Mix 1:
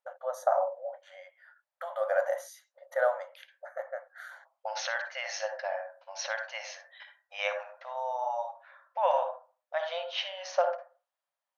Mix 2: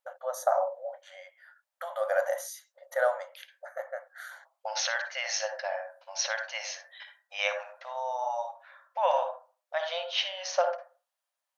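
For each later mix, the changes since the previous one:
master: add high shelf 3500 Hz +10.5 dB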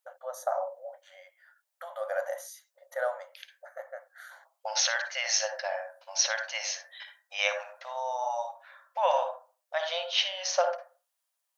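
first voice -4.5 dB; second voice: add high shelf 4800 Hz +9 dB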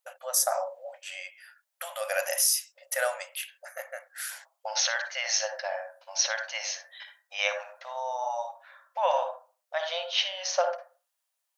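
first voice: remove running mean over 17 samples

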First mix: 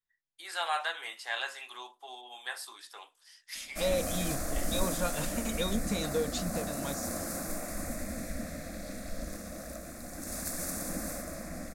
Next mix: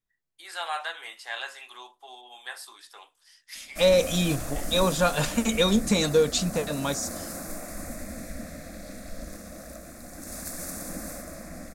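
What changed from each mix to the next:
second voice +11.0 dB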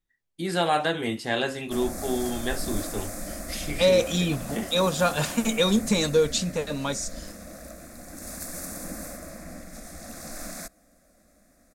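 first voice: remove ladder high-pass 760 Hz, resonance 25%; background: entry -2.05 s

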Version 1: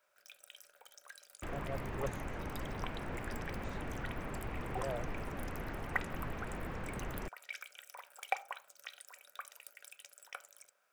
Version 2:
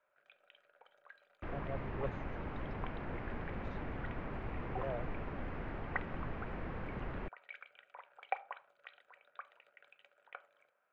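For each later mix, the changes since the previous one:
first sound: add running mean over 8 samples; master: add air absorption 250 m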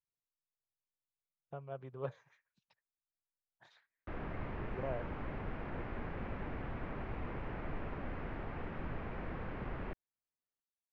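first sound: muted; second sound: entry +2.65 s

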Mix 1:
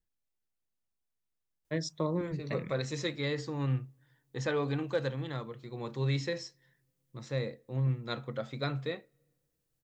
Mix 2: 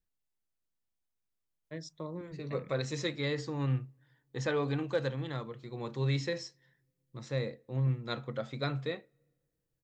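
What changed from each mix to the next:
first voice -9.0 dB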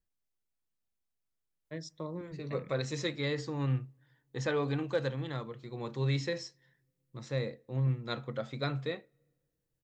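first voice: send on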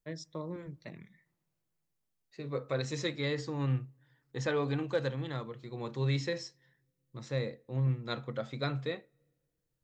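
first voice: entry -1.65 s

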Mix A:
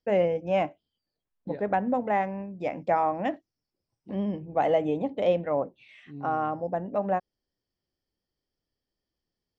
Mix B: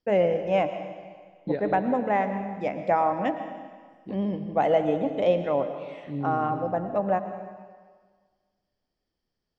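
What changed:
second voice +6.0 dB; reverb: on, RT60 1.6 s

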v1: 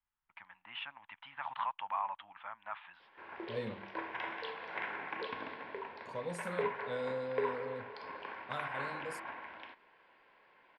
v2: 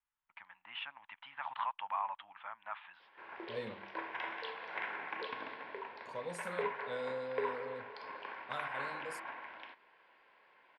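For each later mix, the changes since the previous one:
master: add low shelf 280 Hz -8.5 dB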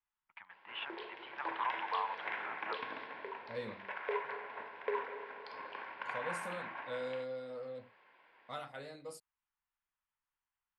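background: entry -2.50 s

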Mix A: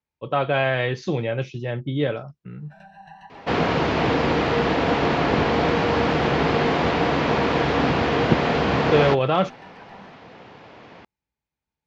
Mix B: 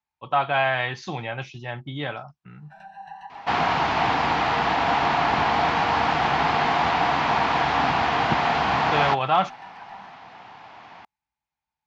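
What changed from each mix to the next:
master: add resonant low shelf 630 Hz -7 dB, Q 3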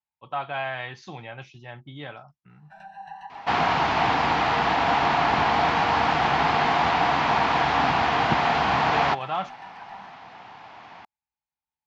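speech -8.0 dB

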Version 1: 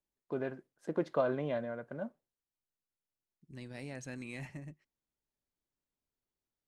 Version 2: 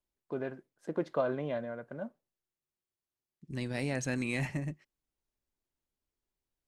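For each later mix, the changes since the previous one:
second voice +10.5 dB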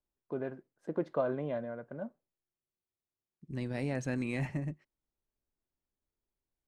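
master: add high shelf 2100 Hz -9.5 dB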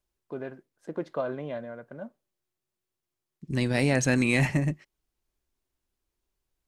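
second voice +10.0 dB; master: add high shelf 2100 Hz +9.5 dB

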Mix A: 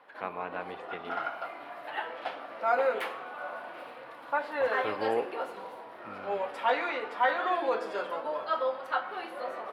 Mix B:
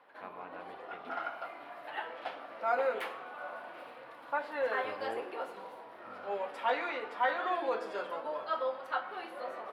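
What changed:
speech -11.5 dB; background -4.0 dB

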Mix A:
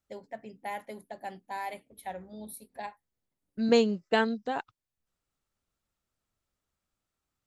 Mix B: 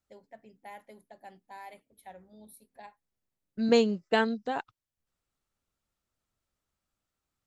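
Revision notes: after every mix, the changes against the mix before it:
first voice -9.5 dB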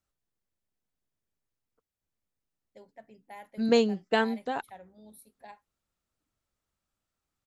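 first voice: entry +2.65 s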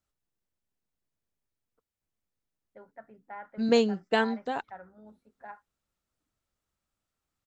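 first voice: add synth low-pass 1400 Hz, resonance Q 7.5

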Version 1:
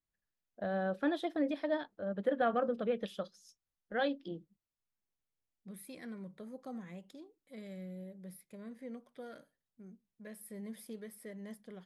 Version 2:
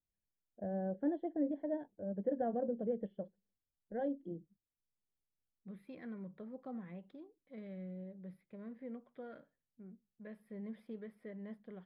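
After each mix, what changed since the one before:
first voice: add running mean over 35 samples; master: add air absorption 460 m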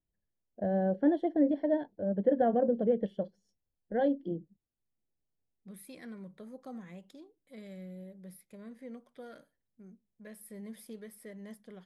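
first voice +8.0 dB; master: remove air absorption 460 m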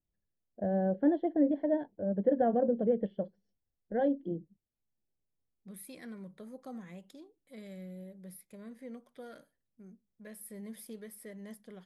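first voice: add air absorption 320 m; master: add high shelf 8700 Hz +6.5 dB

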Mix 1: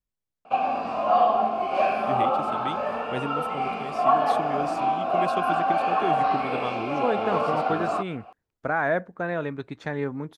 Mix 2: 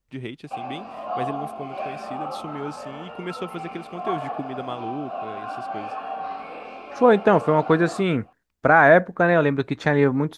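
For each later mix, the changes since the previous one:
first voice: entry -1.95 s; second voice +10.5 dB; background -8.5 dB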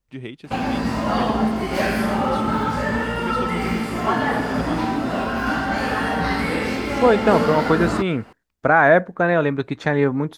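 background: remove vowel filter a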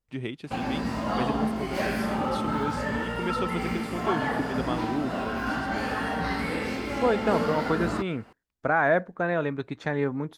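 second voice -8.5 dB; background -7.0 dB

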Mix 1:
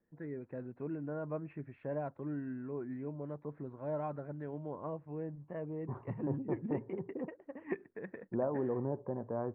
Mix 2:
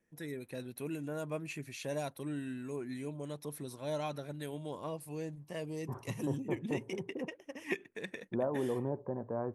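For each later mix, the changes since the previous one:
first voice: remove inverse Chebyshev low-pass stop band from 6800 Hz, stop band 70 dB; master: remove air absorption 170 m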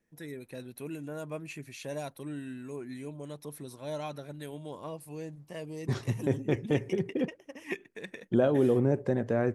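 second voice: remove ladder low-pass 1100 Hz, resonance 65%

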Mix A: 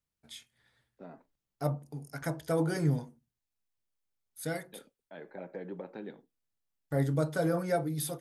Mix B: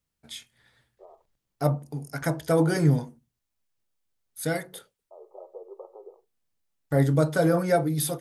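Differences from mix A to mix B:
first voice +7.5 dB; second voice: add brick-wall FIR band-pass 350–1300 Hz

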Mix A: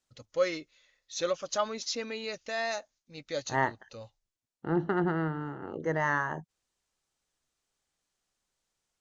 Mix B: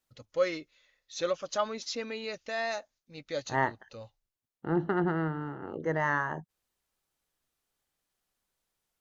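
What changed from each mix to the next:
master: remove synth low-pass 7300 Hz, resonance Q 1.6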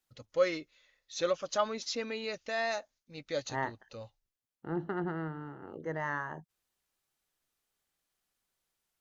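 second voice -6.5 dB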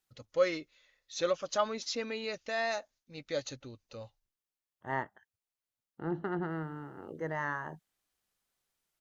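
second voice: entry +1.35 s

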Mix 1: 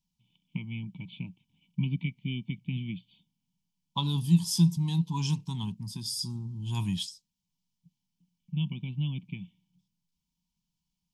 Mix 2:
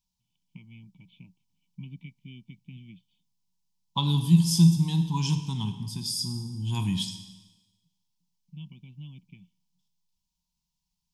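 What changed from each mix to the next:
first voice -12.0 dB; reverb: on, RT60 1.1 s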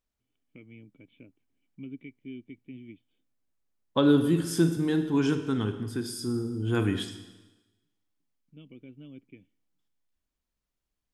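first voice -3.0 dB; master: remove EQ curve 110 Hz 0 dB, 180 Hz +12 dB, 260 Hz -13 dB, 540 Hz -25 dB, 950 Hz +8 dB, 1400 Hz -28 dB, 2600 Hz +1 dB, 5300 Hz +11 dB, 8400 Hz +5 dB

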